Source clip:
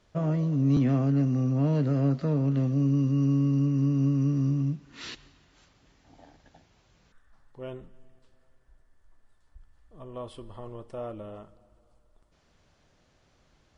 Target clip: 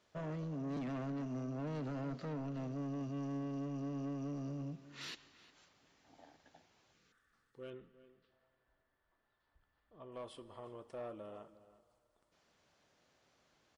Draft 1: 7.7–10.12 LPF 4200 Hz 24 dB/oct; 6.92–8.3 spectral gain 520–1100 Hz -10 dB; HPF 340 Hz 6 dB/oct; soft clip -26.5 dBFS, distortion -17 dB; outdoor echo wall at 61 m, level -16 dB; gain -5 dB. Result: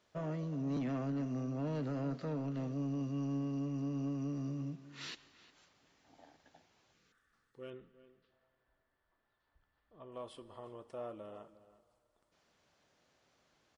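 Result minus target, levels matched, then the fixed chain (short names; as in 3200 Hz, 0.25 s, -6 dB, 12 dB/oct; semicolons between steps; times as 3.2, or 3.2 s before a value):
soft clip: distortion -7 dB
7.7–10.12 LPF 4200 Hz 24 dB/oct; 6.92–8.3 spectral gain 520–1100 Hz -10 dB; HPF 340 Hz 6 dB/oct; soft clip -33 dBFS, distortion -10 dB; outdoor echo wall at 61 m, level -16 dB; gain -5 dB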